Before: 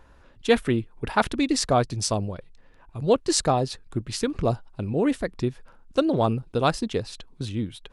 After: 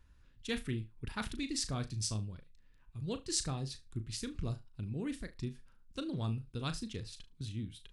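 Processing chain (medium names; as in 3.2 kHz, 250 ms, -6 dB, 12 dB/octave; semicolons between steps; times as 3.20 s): amplifier tone stack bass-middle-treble 6-0-2; flutter echo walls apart 6.3 m, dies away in 0.21 s; trim +5 dB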